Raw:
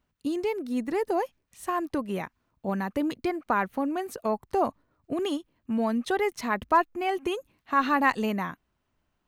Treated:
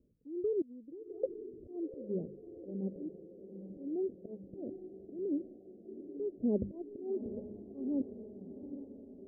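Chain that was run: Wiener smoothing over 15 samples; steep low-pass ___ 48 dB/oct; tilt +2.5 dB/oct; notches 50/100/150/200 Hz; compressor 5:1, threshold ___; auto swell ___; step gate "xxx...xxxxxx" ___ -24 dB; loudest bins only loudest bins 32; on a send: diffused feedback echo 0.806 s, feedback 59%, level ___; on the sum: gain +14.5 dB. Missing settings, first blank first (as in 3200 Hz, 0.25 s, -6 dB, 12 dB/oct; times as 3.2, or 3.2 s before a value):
500 Hz, -37 dBFS, 0.588 s, 73 bpm, -10.5 dB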